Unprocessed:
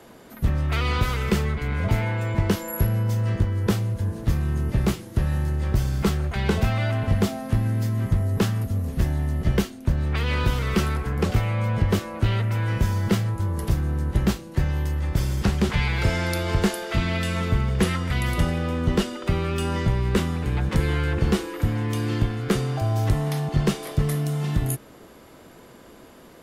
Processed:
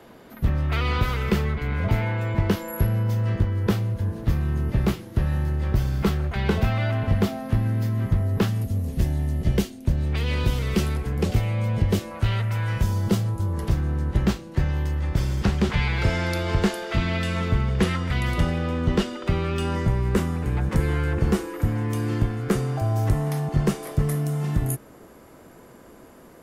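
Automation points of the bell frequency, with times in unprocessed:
bell -7.5 dB 1.2 oct
8200 Hz
from 8.48 s 1300 Hz
from 12.11 s 300 Hz
from 12.83 s 1900 Hz
from 13.53 s 12000 Hz
from 19.75 s 3600 Hz

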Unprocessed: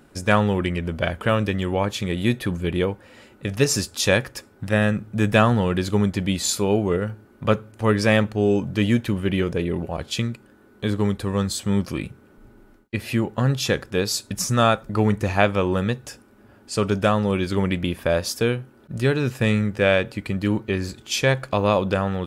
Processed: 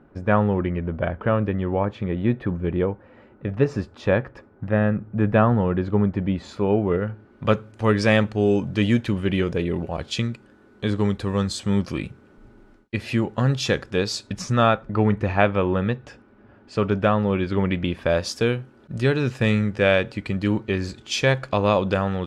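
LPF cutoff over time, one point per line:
6.31 s 1400 Hz
7.11 s 2600 Hz
7.56 s 6500 Hz
13.89 s 6500 Hz
14.84 s 2700 Hz
17.54 s 2700 Hz
18.28 s 6300 Hz

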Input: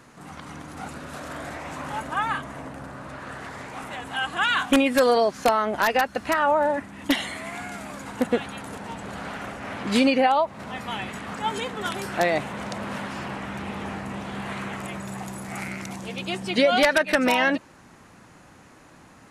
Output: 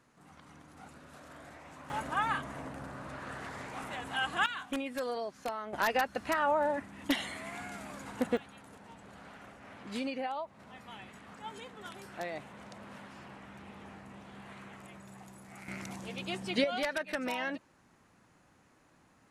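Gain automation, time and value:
-16 dB
from 1.9 s -5.5 dB
from 4.46 s -17 dB
from 5.73 s -8 dB
from 8.37 s -17 dB
from 15.68 s -8 dB
from 16.64 s -14.5 dB

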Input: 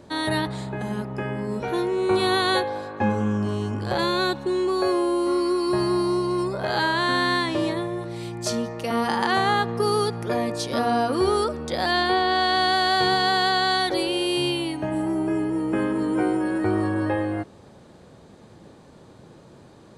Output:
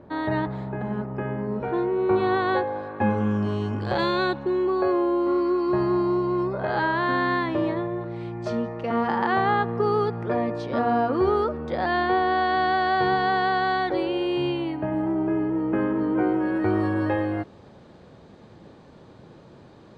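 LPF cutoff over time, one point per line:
2.66 s 1600 Hz
3.35 s 3900 Hz
4.04 s 3900 Hz
4.6 s 1900 Hz
16.22 s 1900 Hz
16.88 s 4600 Hz

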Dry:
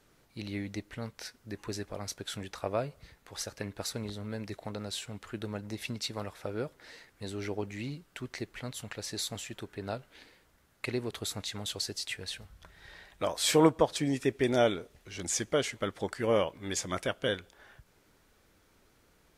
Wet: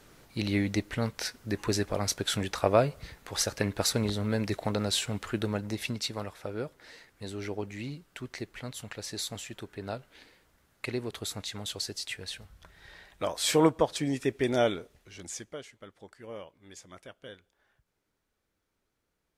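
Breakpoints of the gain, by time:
5.18 s +9 dB
6.39 s 0 dB
14.78 s 0 dB
15.4 s -9 dB
15.66 s -15.5 dB

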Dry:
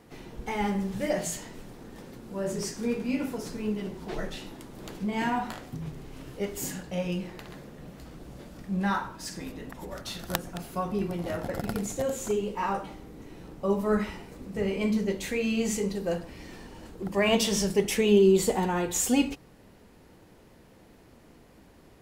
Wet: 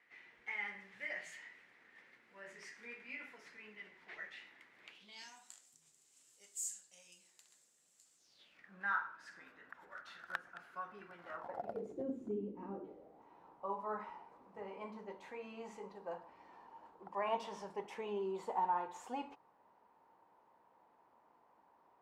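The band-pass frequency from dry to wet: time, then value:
band-pass, Q 4.9
4.81 s 2000 Hz
5.41 s 7600 Hz
8.16 s 7600 Hz
8.71 s 1500 Hz
11.24 s 1500 Hz
12.13 s 270 Hz
12.71 s 270 Hz
13.25 s 940 Hz

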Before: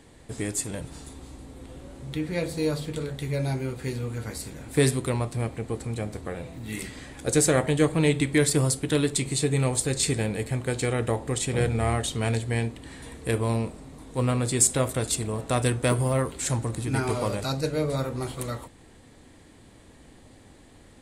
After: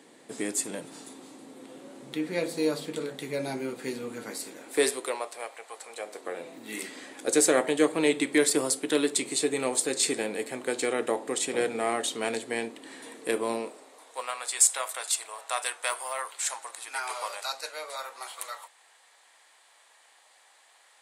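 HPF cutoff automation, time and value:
HPF 24 dB/oct
4.22 s 220 Hz
5.72 s 710 Hz
6.47 s 270 Hz
13.52 s 270 Hz
14.32 s 770 Hz

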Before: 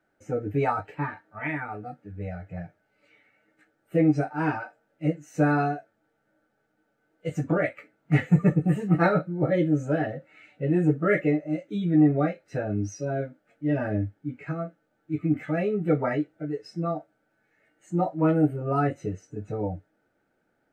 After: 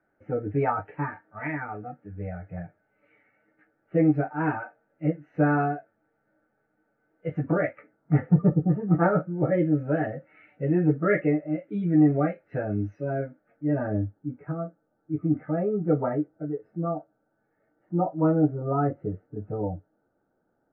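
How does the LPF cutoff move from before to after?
LPF 24 dB/oct
7.57 s 2100 Hz
8.55 s 1100 Hz
9.69 s 2200 Hz
13.12 s 2200 Hz
14.18 s 1300 Hz

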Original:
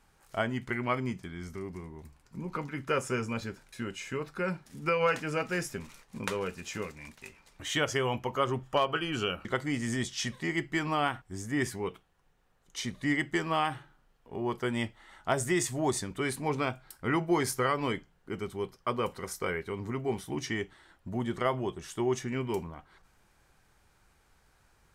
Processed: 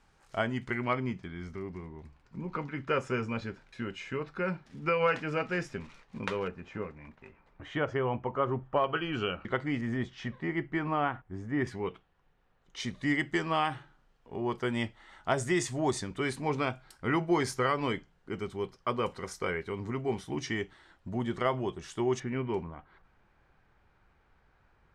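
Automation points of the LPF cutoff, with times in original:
6800 Hz
from 0.93 s 3800 Hz
from 6.48 s 1500 Hz
from 8.84 s 2900 Hz
from 9.81 s 1800 Hz
from 11.67 s 3700 Hz
from 12.8 s 6700 Hz
from 22.2 s 2500 Hz

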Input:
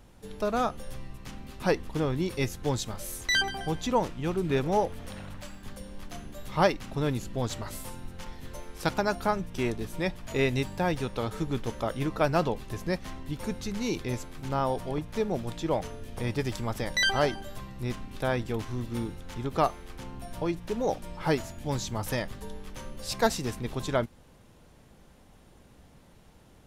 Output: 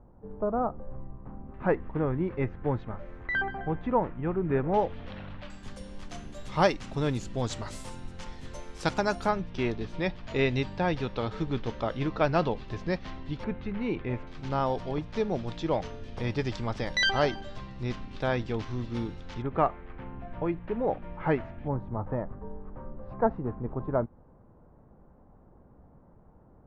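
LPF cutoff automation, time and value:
LPF 24 dB/oct
1100 Hz
from 1.54 s 1900 Hz
from 4.74 s 3700 Hz
from 5.5 s 8200 Hz
from 9.29 s 4800 Hz
from 13.44 s 2600 Hz
from 14.27 s 5400 Hz
from 19.42 s 2300 Hz
from 21.68 s 1200 Hz

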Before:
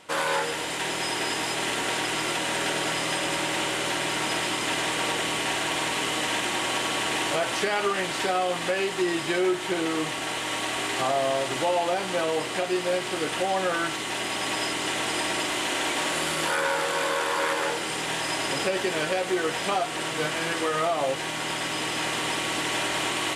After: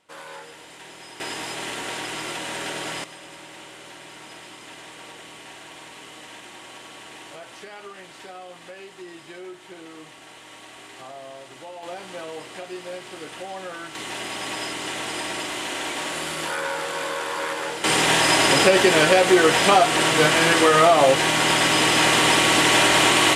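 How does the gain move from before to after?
-14 dB
from 1.2 s -3.5 dB
from 3.04 s -15 dB
from 11.83 s -9 dB
from 13.95 s -2 dB
from 17.84 s +10.5 dB

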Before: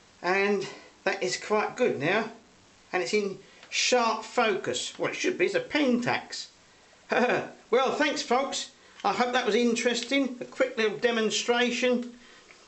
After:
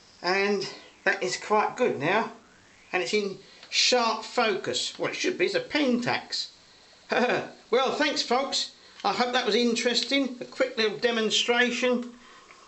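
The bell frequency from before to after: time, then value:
bell +12 dB 0.29 oct
0.68 s 5100 Hz
1.34 s 920 Hz
2.19 s 920 Hz
3.26 s 4200 Hz
11.29 s 4200 Hz
11.82 s 1100 Hz

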